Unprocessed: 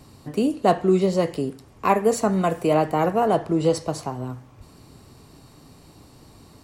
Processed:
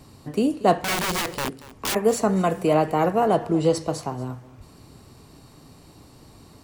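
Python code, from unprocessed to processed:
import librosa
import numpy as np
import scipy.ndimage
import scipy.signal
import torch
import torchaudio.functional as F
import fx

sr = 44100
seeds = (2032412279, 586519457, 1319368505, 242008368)

y = fx.overflow_wrap(x, sr, gain_db=20.0, at=(0.82, 1.95))
y = y + 10.0 ** (-18.5 / 20.0) * np.pad(y, (int(233 * sr / 1000.0), 0))[:len(y)]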